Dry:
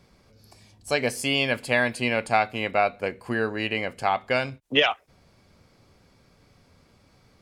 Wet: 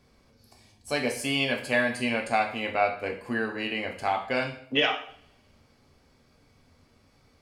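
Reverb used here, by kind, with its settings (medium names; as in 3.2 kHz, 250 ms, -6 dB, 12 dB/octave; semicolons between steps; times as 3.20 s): two-slope reverb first 0.53 s, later 1.6 s, from -27 dB, DRR 1.5 dB; trim -5 dB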